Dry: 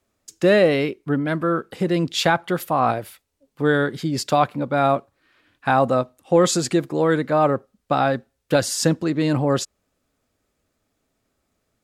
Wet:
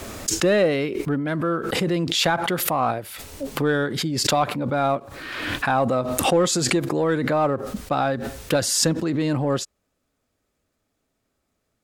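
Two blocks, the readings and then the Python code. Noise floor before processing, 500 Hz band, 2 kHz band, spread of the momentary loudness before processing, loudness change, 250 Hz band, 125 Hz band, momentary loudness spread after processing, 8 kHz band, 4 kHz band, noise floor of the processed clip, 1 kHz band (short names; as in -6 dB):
-74 dBFS, -2.5 dB, -1.0 dB, 7 LU, -1.5 dB, -2.0 dB, -1.5 dB, 9 LU, +4.0 dB, +3.5 dB, -75 dBFS, -2.5 dB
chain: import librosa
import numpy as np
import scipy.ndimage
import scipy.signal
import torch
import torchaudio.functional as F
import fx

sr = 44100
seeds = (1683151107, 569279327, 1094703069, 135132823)

p1 = np.clip(x, -10.0 ** (-14.5 / 20.0), 10.0 ** (-14.5 / 20.0))
p2 = x + (p1 * 10.0 ** (-8.0 / 20.0))
p3 = fx.pre_swell(p2, sr, db_per_s=34.0)
y = p3 * 10.0 ** (-5.5 / 20.0)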